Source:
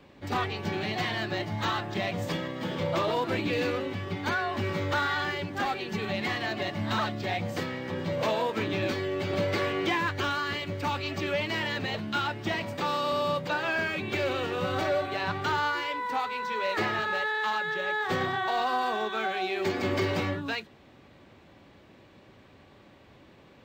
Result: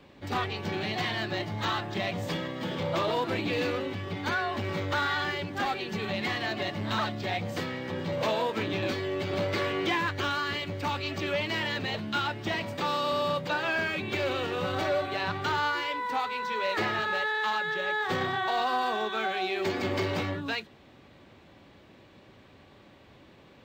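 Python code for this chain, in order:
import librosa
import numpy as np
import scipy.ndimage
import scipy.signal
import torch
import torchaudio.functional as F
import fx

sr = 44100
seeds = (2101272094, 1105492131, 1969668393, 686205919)

y = fx.peak_eq(x, sr, hz=3600.0, db=2.0, octaves=0.77)
y = fx.transformer_sat(y, sr, knee_hz=440.0)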